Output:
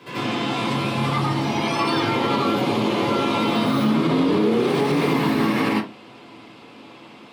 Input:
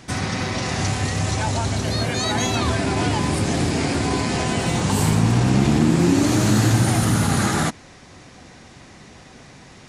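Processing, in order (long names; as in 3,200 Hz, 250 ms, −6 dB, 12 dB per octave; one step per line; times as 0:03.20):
high-pass filter 160 Hz 12 dB per octave
flat-topped bell 7,000 Hz −15.5 dB
wrong playback speed 33 rpm record played at 45 rpm
convolution reverb RT60 0.25 s, pre-delay 78 ms, DRR −7 dB
brickwall limiter −2.5 dBFS, peak gain reduction 5.5 dB
echo ahead of the sound 145 ms −21.5 dB
level −8.5 dB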